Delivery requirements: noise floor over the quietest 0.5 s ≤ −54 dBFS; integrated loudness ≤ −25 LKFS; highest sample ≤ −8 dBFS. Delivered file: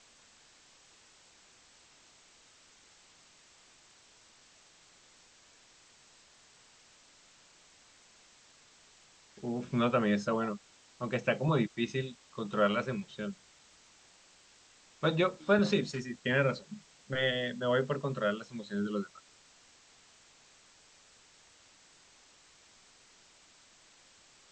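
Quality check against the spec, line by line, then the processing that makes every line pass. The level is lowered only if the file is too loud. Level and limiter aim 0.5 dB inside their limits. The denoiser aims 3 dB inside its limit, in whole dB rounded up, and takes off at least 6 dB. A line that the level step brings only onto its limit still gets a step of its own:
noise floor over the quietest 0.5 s −61 dBFS: in spec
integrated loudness −32.5 LKFS: in spec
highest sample −14.0 dBFS: in spec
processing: no processing needed

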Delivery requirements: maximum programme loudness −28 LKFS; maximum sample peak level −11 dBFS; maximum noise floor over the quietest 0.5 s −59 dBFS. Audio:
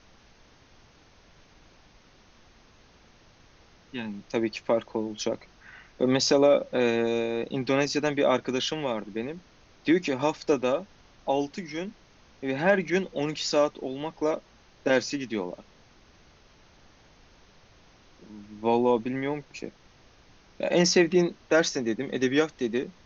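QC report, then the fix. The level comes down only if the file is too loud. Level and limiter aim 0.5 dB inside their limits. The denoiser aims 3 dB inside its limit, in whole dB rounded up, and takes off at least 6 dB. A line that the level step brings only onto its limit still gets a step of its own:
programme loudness −27.0 LKFS: out of spec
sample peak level −9.0 dBFS: out of spec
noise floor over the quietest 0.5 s −57 dBFS: out of spec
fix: broadband denoise 6 dB, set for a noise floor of −57 dBFS
level −1.5 dB
brickwall limiter −11.5 dBFS

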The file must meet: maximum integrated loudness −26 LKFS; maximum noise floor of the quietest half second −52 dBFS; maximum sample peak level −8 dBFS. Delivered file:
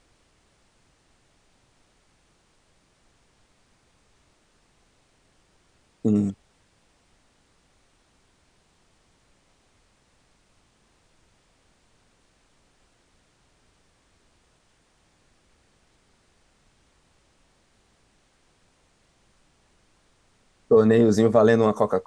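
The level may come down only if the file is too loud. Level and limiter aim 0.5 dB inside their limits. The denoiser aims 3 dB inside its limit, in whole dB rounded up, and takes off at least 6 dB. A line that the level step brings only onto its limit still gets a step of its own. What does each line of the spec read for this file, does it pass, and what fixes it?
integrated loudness −20.0 LKFS: out of spec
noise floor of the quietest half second −64 dBFS: in spec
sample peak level −4.5 dBFS: out of spec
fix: level −6.5 dB

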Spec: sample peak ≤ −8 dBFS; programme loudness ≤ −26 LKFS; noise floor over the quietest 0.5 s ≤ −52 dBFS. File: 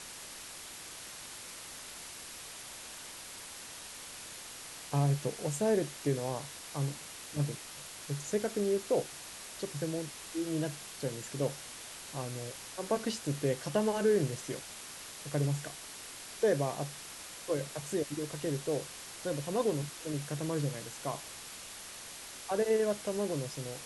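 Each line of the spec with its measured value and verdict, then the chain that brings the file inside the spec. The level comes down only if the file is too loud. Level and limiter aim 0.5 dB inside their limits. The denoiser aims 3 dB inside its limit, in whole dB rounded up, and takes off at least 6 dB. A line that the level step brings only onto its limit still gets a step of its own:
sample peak −16.5 dBFS: in spec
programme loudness −36.0 LKFS: in spec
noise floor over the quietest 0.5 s −47 dBFS: out of spec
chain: broadband denoise 8 dB, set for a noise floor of −47 dBFS

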